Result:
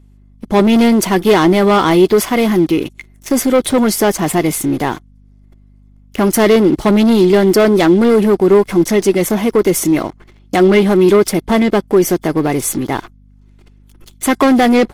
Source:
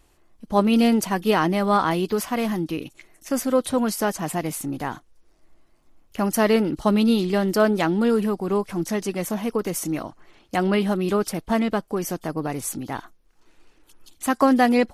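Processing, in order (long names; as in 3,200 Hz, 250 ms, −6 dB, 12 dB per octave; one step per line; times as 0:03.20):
leveller curve on the samples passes 3
mains hum 50 Hz, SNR 30 dB
hollow resonant body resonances 370/2,100/3,400 Hz, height 8 dB, ringing for 30 ms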